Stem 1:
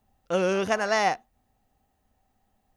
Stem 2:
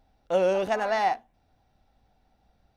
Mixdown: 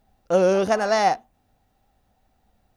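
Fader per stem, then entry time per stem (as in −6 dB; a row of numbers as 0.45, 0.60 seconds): +1.5, −1.5 decibels; 0.00, 0.00 seconds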